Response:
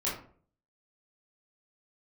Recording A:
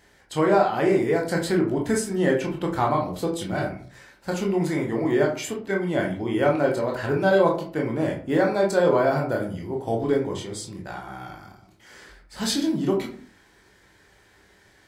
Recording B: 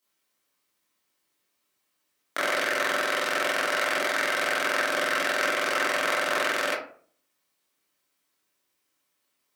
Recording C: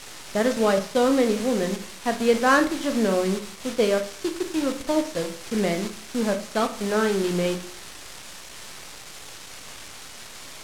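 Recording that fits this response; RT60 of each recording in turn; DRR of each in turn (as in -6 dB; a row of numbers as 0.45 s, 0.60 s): B; 0.50 s, 0.50 s, 0.50 s; -0.5 dB, -8.0 dB, 6.5 dB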